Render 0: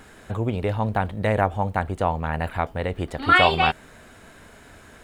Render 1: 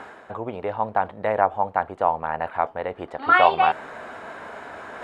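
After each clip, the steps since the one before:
reversed playback
upward compression, threshold −23 dBFS
reversed playback
resonant band-pass 870 Hz, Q 1.2
level +4 dB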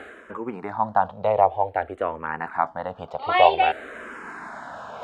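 frequency shifter mixed with the dry sound −0.53 Hz
level +3 dB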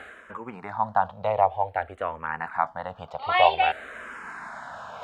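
parametric band 340 Hz −11 dB 1.3 octaves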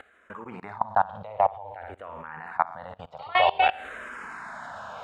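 flutter between parallel walls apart 9.9 metres, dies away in 0.4 s
output level in coarse steps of 21 dB
level +2.5 dB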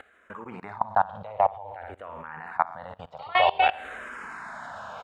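slap from a distant wall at 50 metres, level −29 dB

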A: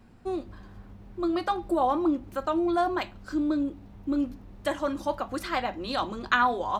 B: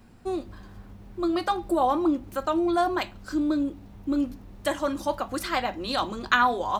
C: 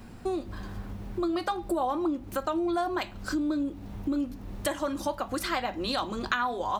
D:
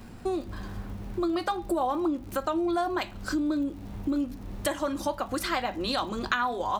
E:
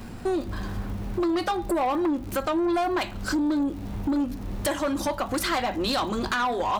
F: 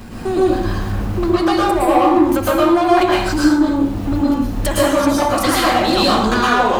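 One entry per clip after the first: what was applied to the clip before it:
high-shelf EQ 5,100 Hz +7.5 dB; level +1.5 dB
downward compressor 3 to 1, threshold −37 dBFS, peak gain reduction 16 dB; level +7 dB
surface crackle 62 per second −43 dBFS; level +1 dB
soft clipping −26.5 dBFS, distortion −12 dB; level +6.5 dB
dense smooth reverb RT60 0.84 s, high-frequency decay 0.7×, pre-delay 100 ms, DRR −6 dB; level +4.5 dB

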